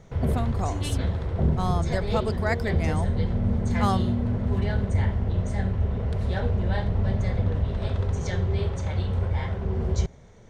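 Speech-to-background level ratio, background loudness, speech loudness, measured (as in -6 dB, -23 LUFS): -4.5 dB, -26.5 LUFS, -31.0 LUFS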